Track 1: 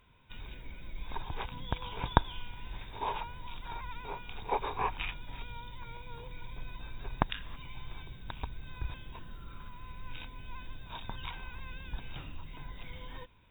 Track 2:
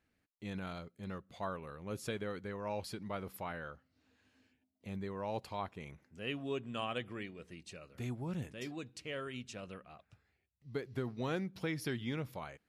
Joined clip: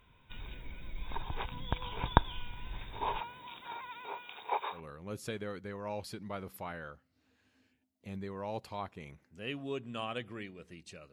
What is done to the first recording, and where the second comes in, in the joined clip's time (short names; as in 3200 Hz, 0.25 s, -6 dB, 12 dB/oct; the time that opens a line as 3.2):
track 1
3.19–4.81 HPF 190 Hz -> 720 Hz
4.76 switch to track 2 from 1.56 s, crossfade 0.10 s